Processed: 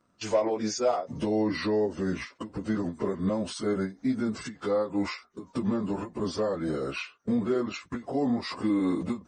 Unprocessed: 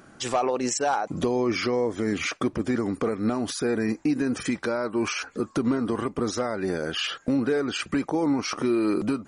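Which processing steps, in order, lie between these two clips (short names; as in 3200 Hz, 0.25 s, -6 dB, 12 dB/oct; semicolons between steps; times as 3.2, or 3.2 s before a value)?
pitch shift by moving bins -2.5 st; dynamic EQ 540 Hz, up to +7 dB, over -45 dBFS, Q 3; gate -38 dBFS, range -13 dB; ending taper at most 220 dB/s; gain -2.5 dB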